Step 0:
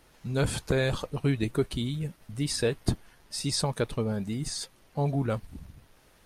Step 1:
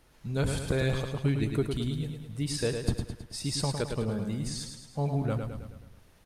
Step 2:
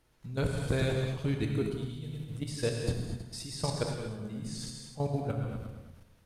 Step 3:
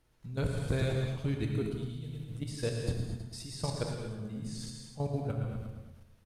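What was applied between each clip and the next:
low-shelf EQ 160 Hz +4.5 dB; on a send: repeating echo 107 ms, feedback 52%, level −6 dB; on the sum: level −4 dB
output level in coarse steps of 14 dB; reverb whose tail is shaped and stops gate 270 ms flat, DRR 2 dB
low-shelf EQ 160 Hz +4 dB; single-tap delay 116 ms −12.5 dB; level −3.5 dB

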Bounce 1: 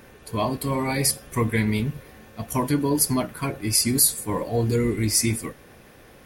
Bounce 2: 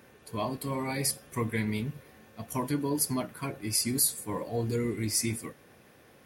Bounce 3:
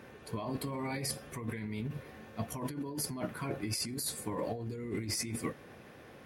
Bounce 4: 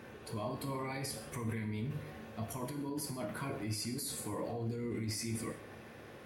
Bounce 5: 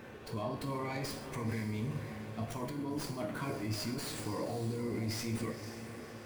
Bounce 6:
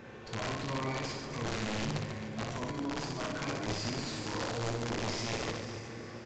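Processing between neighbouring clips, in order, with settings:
high-pass filter 88 Hz; level −7.5 dB
high-shelf EQ 5,900 Hz −11.5 dB; compressor whose output falls as the input rises −37 dBFS, ratio −1
brickwall limiter −31.5 dBFS, peak gain reduction 8.5 dB; reverb whose tail is shaped and stops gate 210 ms falling, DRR 5 dB
feedback delay with all-pass diffusion 522 ms, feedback 42%, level −10.5 dB; windowed peak hold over 3 samples; level +1.5 dB
wrap-around overflow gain 29.5 dB; reverse bouncing-ball delay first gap 60 ms, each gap 1.4×, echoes 5; downsampling to 16,000 Hz

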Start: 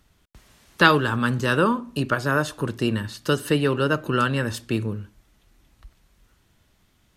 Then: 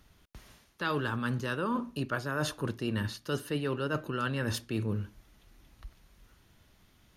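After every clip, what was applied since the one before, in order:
notch filter 7,800 Hz, Q 5.3
reversed playback
downward compressor 12 to 1, threshold −28 dBFS, peak gain reduction 19 dB
reversed playback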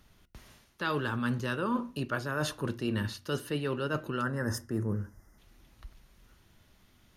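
gain on a spectral selection 0:04.22–0:05.38, 2,100–4,800 Hz −20 dB
on a send at −18 dB: EQ curve with evenly spaced ripples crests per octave 2, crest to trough 17 dB + convolution reverb RT60 0.25 s, pre-delay 3 ms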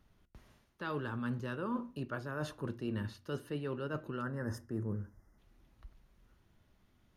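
high-shelf EQ 2,000 Hz −9 dB
level −5.5 dB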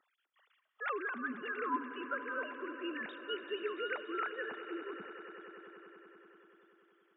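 three sine waves on the formant tracks
high-pass filter 1,200 Hz 6 dB per octave
echo that builds up and dies away 96 ms, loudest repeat 5, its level −16.5 dB
level +6 dB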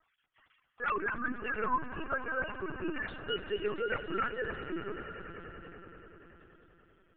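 linear-prediction vocoder at 8 kHz pitch kept
level +4.5 dB

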